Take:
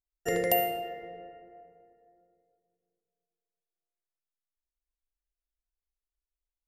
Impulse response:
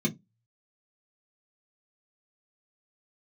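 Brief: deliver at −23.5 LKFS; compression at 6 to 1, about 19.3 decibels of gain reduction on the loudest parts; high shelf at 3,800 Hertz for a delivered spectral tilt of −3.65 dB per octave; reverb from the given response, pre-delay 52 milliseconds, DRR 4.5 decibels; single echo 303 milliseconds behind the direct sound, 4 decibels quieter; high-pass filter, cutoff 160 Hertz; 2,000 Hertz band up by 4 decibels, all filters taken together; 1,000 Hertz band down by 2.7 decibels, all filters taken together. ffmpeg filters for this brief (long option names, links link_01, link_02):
-filter_complex "[0:a]highpass=160,equalizer=frequency=1000:width_type=o:gain=-6.5,equalizer=frequency=2000:width_type=o:gain=4,highshelf=frequency=3800:gain=7,acompressor=threshold=-39dB:ratio=6,aecho=1:1:303:0.631,asplit=2[link_01][link_02];[1:a]atrim=start_sample=2205,adelay=52[link_03];[link_02][link_03]afir=irnorm=-1:irlink=0,volume=-11.5dB[link_04];[link_01][link_04]amix=inputs=2:normalize=0,volume=16.5dB"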